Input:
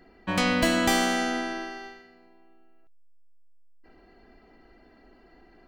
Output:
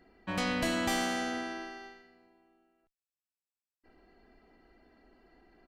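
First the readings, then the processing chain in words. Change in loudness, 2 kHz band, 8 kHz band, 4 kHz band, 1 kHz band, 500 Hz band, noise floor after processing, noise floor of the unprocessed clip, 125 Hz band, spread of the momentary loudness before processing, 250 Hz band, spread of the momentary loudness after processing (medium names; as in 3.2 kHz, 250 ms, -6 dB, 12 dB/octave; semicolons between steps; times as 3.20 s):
-7.5 dB, -7.5 dB, -7.5 dB, -7.5 dB, -7.5 dB, -7.5 dB, under -85 dBFS, -57 dBFS, -7.0 dB, 14 LU, -7.5 dB, 16 LU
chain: valve stage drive 17 dB, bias 0.35; resampled via 32 kHz; trim -5.5 dB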